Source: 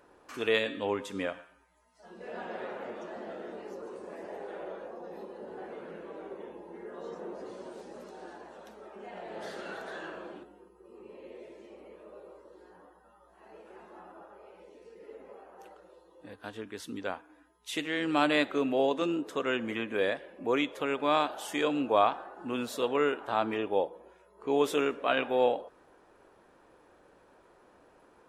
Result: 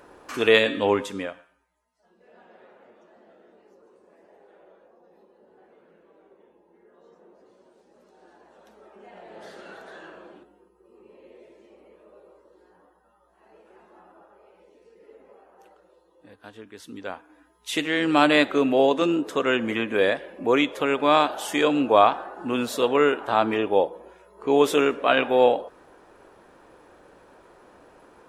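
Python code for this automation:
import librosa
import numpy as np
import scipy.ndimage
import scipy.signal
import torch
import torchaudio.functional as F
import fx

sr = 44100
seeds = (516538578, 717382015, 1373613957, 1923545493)

y = fx.gain(x, sr, db=fx.line((0.98, 10.0), (1.36, -2.0), (2.18, -13.5), (7.82, -13.5), (8.78, -2.5), (16.72, -2.5), (17.76, 8.0)))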